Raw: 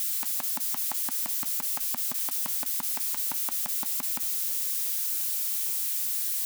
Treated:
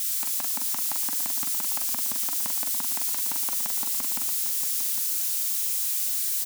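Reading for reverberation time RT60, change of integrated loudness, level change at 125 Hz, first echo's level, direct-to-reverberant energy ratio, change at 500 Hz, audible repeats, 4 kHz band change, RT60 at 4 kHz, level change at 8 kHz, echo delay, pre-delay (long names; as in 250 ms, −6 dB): no reverb audible, +2.5 dB, can't be measured, −5.0 dB, no reverb audible, +2.0 dB, 4, +3.5 dB, no reverb audible, +4.0 dB, 42 ms, no reverb audible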